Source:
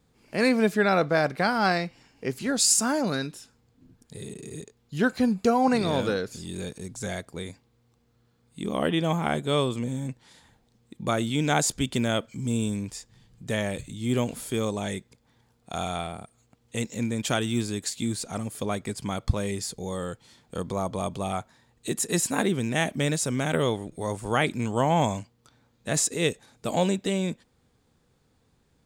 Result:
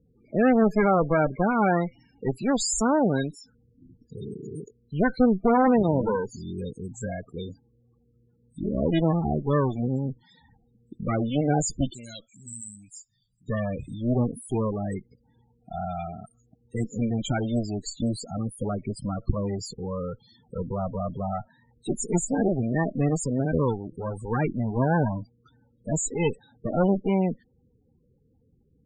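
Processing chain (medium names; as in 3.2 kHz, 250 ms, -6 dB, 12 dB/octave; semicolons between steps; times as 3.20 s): Chebyshev shaper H 4 -8 dB, 5 -11 dB, 6 -18 dB, 8 -11 dB, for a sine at -7.5 dBFS; 11.93–13.48 s: pre-emphasis filter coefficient 0.9; loudest bins only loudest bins 16; trim -4.5 dB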